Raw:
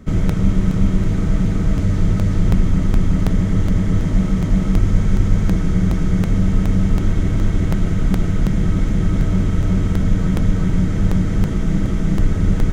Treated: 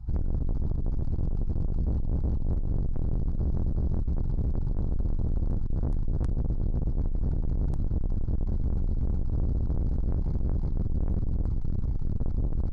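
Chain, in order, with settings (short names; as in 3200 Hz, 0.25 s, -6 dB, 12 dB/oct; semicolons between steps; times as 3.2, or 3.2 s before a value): EQ curve 100 Hz 0 dB, 600 Hz -30 dB, 1100 Hz -15 dB, 3500 Hz -30 dB, 5400 Hz -26 dB, 8100 Hz -21 dB; tube stage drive 30 dB, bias 0.3; pitch shift -7 st; gain +6.5 dB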